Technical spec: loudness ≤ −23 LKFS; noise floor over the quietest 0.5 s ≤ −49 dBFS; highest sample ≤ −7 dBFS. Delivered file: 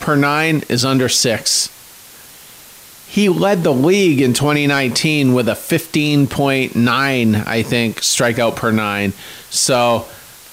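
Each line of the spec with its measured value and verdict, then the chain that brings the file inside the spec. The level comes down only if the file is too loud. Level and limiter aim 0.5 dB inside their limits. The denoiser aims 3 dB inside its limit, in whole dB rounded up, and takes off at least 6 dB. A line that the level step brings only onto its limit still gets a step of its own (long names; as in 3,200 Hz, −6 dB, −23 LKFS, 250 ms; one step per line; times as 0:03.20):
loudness −15.0 LKFS: out of spec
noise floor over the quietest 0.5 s −40 dBFS: out of spec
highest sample −4.5 dBFS: out of spec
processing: broadband denoise 6 dB, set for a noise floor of −40 dBFS
level −8.5 dB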